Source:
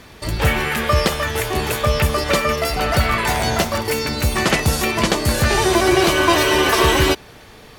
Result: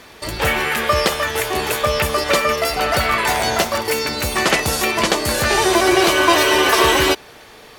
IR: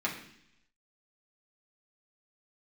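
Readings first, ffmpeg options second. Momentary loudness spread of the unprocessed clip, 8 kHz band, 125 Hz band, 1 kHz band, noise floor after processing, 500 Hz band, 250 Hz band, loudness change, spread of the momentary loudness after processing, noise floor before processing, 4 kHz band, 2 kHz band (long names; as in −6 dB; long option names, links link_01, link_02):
6 LU, +2.0 dB, −7.5 dB, +2.0 dB, −43 dBFS, +1.0 dB, −1.5 dB, +1.0 dB, 7 LU, −43 dBFS, +2.0 dB, +2.0 dB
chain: -af "bass=frequency=250:gain=-10,treble=frequency=4000:gain=0,volume=2dB"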